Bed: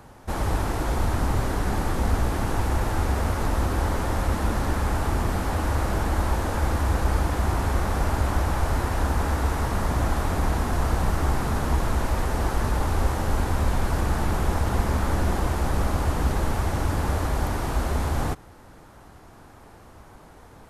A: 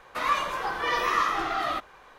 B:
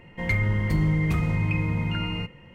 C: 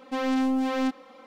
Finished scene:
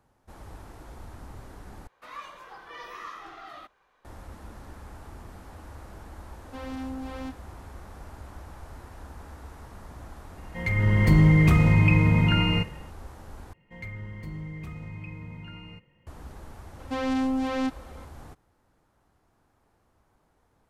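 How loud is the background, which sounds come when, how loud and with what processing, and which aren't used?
bed -20 dB
1.87 s: replace with A -16 dB
6.41 s: add C -11.5 dB
10.37 s: add B -6 dB + level rider gain up to 14 dB
13.53 s: replace with B -15 dB
16.79 s: add C -1.5 dB + resampled via 22.05 kHz

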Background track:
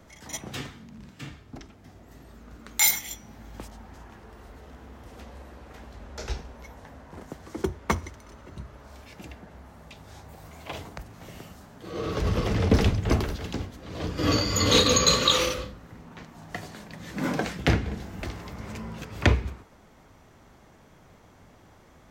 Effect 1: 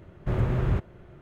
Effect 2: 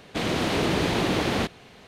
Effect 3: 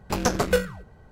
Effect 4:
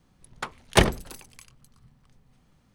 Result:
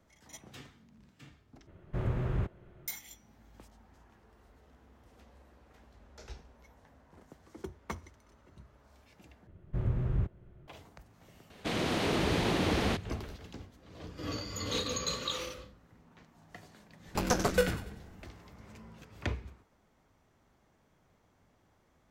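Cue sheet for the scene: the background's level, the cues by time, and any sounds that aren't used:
background track -14.5 dB
1.67 s: replace with 1 -7 dB
9.47 s: replace with 1 -14 dB + bass shelf 260 Hz +10 dB
11.50 s: add 2 -6 dB
17.05 s: add 3 -5.5 dB + feedback echo behind a high-pass 95 ms, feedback 38%, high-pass 1.9 kHz, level -8 dB
not used: 4

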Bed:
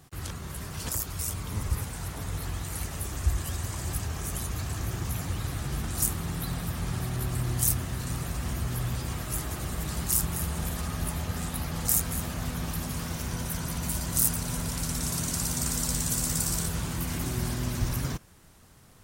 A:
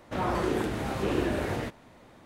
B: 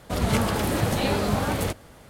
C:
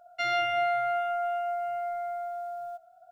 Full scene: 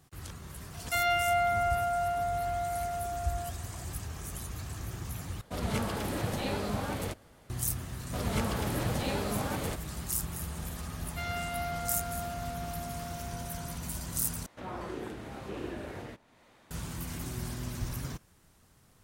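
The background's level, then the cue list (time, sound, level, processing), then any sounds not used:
bed -7 dB
0.73 s: add C -0.5 dB
5.41 s: replace with B -9 dB
8.03 s: add B -8.5 dB
10.98 s: add C -9.5 dB + CVSD coder 32 kbps
14.46 s: replace with A -11 dB + tape noise reduction on one side only encoder only

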